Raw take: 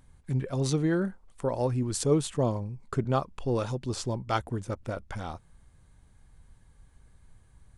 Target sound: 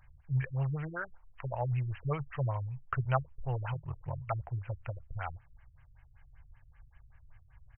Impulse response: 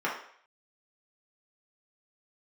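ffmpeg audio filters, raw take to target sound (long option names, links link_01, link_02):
-filter_complex "[0:a]firequalizer=gain_entry='entry(140,0);entry(190,-29);entry(660,0);entry(1800,9)':delay=0.05:min_phase=1,asplit=3[link_01][link_02][link_03];[link_01]afade=type=out:start_time=3.74:duration=0.02[link_04];[link_02]aeval=exprs='val(0)*sin(2*PI*20*n/s)':channel_layout=same,afade=type=in:start_time=3.74:duration=0.02,afade=type=out:start_time=4.19:duration=0.02[link_05];[link_03]afade=type=in:start_time=4.19:duration=0.02[link_06];[link_04][link_05][link_06]amix=inputs=3:normalize=0,afftfilt=real='re*lt(b*sr/1024,330*pow(3200/330,0.5+0.5*sin(2*PI*5.2*pts/sr)))':imag='im*lt(b*sr/1024,330*pow(3200/330,0.5+0.5*sin(2*PI*5.2*pts/sr)))':win_size=1024:overlap=0.75,volume=-1dB"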